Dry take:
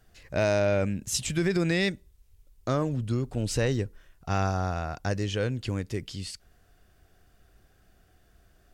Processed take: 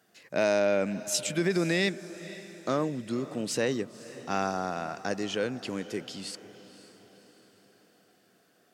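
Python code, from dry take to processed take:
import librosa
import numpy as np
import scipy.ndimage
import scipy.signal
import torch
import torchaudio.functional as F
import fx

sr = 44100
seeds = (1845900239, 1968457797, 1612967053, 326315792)

y = scipy.signal.sosfilt(scipy.signal.butter(4, 180.0, 'highpass', fs=sr, output='sos'), x)
y = fx.echo_diffused(y, sr, ms=528, feedback_pct=50, wet_db=-16.0)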